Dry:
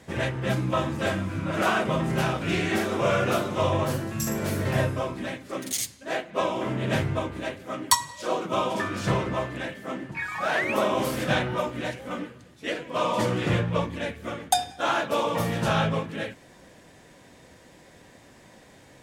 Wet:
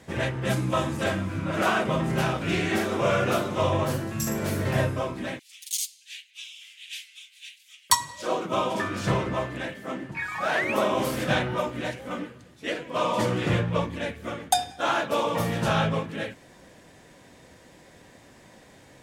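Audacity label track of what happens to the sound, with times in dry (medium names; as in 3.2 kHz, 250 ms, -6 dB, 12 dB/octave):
0.450000	1.040000	peaking EQ 9.6 kHz +7.5 dB 1.4 oct
5.390000	7.900000	steep high-pass 2.6 kHz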